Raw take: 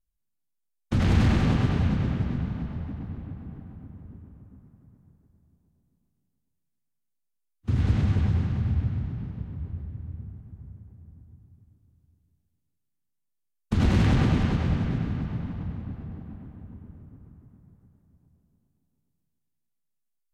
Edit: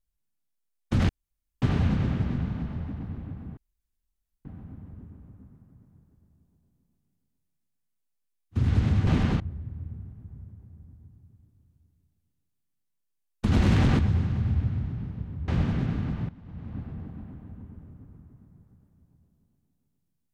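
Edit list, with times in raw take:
1.09–1.62 s: room tone
3.57 s: insert room tone 0.88 s
8.19–9.68 s: swap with 14.27–14.60 s
15.41–15.89 s: fade in quadratic, from -16 dB

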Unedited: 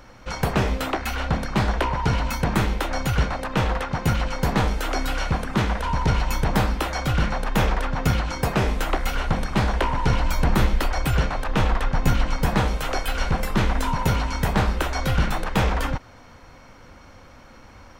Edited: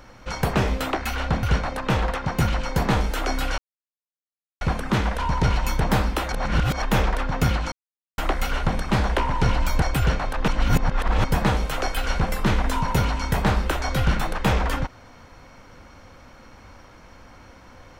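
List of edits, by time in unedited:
1.43–3.10 s: delete
5.25 s: insert silence 1.03 s
6.96–7.46 s: reverse
8.36–8.82 s: mute
10.46–10.93 s: delete
11.59–12.35 s: reverse

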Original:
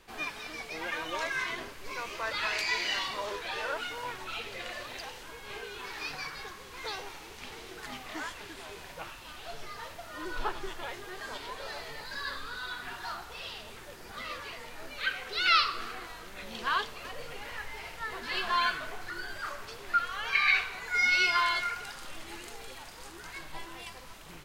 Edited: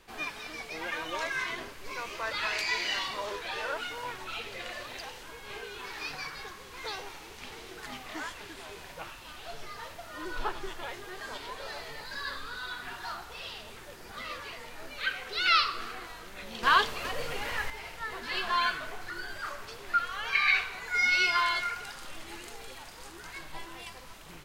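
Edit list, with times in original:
16.63–17.70 s: gain +7 dB

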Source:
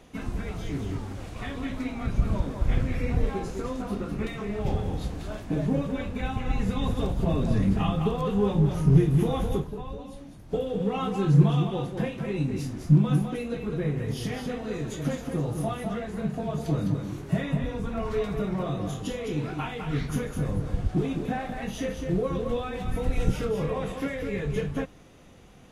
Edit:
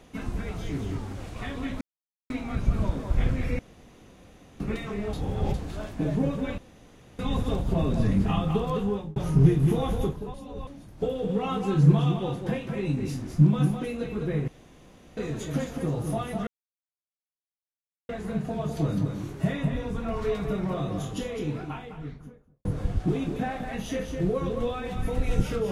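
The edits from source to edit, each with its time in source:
1.81 s: insert silence 0.49 s
3.10–4.11 s: room tone
4.64–5.05 s: reverse
6.09–6.70 s: room tone
8.27–8.67 s: fade out
9.85–10.18 s: reverse
13.99–14.68 s: room tone
15.98 s: insert silence 1.62 s
19.04–20.54 s: studio fade out

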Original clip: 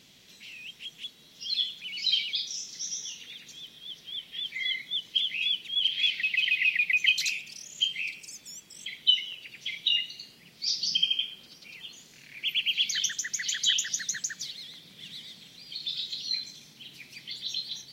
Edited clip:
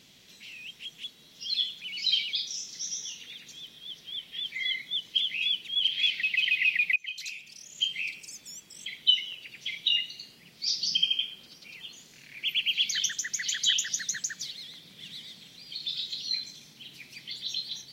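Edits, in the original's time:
6.96–7.99 s: fade in, from -22.5 dB

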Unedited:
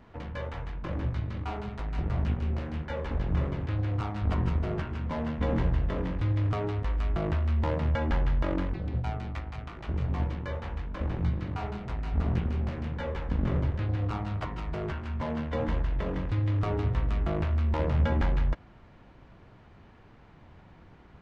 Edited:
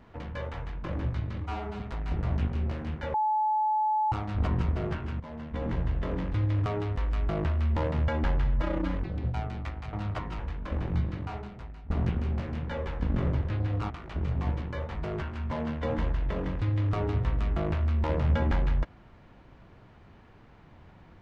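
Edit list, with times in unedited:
1.41–1.67 s: stretch 1.5×
3.01–3.99 s: bleep 860 Hz -23 dBFS
5.07–6.08 s: fade in, from -12 dB
8.31–8.65 s: stretch 1.5×
9.63–10.68 s: swap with 14.19–14.65 s
11.36–12.19 s: fade out, to -19.5 dB

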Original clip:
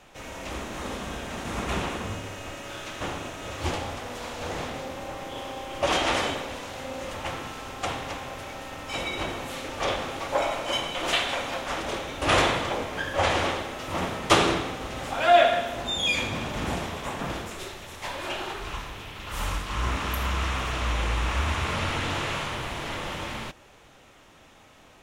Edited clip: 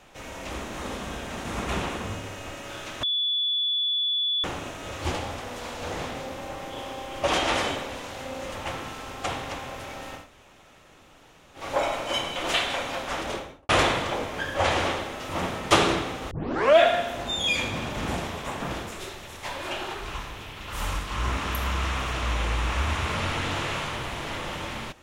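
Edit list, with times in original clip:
3.03 s: add tone 3.44 kHz -22.5 dBFS 1.41 s
8.80–10.20 s: room tone, crossfade 0.16 s
11.87–12.28 s: studio fade out
14.90 s: tape start 0.48 s

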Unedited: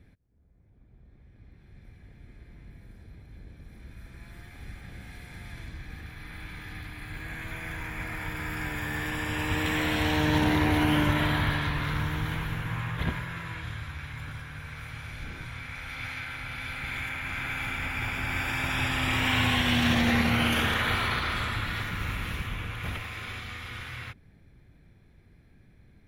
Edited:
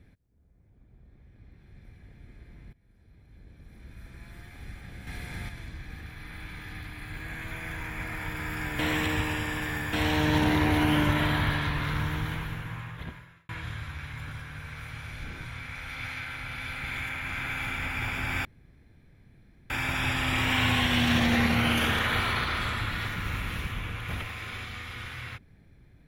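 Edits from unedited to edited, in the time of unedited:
2.73–4.05 s: fade in, from -20 dB
5.07–5.49 s: gain +6 dB
8.79–9.93 s: reverse
12.13–13.49 s: fade out
18.45 s: insert room tone 1.25 s

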